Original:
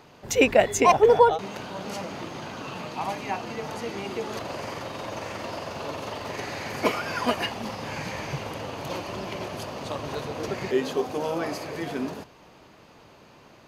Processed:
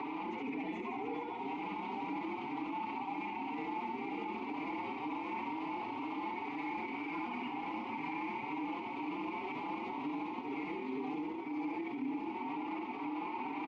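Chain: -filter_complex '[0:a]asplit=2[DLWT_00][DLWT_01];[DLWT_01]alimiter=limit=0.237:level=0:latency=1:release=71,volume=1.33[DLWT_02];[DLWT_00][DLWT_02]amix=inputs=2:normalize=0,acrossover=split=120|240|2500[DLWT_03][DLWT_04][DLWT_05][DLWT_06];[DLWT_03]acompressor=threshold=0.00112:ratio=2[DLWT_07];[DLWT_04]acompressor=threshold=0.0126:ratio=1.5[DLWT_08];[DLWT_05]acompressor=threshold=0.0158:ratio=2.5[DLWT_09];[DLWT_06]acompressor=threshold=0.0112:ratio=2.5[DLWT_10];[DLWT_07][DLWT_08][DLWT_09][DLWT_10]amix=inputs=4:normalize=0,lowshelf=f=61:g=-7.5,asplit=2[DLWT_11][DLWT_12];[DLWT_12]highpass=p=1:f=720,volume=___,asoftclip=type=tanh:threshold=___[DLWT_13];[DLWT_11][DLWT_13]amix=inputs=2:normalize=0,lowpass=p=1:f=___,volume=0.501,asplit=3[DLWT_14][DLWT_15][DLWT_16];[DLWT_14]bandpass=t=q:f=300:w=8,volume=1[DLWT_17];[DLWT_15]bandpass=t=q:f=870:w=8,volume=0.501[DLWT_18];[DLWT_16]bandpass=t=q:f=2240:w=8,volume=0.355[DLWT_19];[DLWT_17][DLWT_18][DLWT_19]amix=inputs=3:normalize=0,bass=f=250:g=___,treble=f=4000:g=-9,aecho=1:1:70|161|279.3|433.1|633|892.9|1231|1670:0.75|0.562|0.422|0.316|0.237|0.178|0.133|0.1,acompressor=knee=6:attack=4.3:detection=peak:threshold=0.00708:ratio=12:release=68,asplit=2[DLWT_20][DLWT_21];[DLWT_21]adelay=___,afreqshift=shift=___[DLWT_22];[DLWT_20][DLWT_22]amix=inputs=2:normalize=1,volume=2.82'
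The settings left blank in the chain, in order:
79.4, 0.211, 1700, 1, 4.8, 2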